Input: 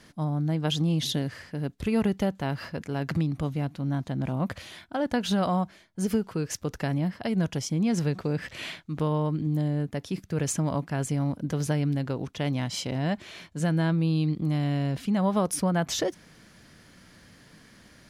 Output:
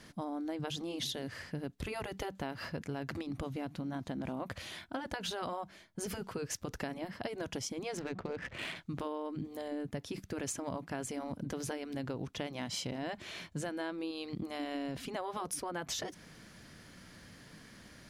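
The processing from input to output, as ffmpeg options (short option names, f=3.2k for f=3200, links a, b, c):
-filter_complex "[0:a]asettb=1/sr,asplit=3[a][b][c];[a]atrim=end=7.974[d];[b]atrim=start=7.97:end=8.76,asetpts=PTS-STARTPTS,afade=t=in:d=0.004:c=qsin,afade=t=out:st=0.786:d=0.004:c=qsin,adynamicsmooth=sensitivity=7:basefreq=1.4k[e];[c]atrim=start=8.756[f];[d][e]acrossfade=d=0.004:c1=hsin:c2=qsin[g];[g][f]acrossfade=d=0.004:c1=qsin:c2=hsin,afftfilt=real='re*lt(hypot(re,im),0.316)':imag='im*lt(hypot(re,im),0.316)':win_size=1024:overlap=0.75,acompressor=threshold=-34dB:ratio=6,volume=-1dB"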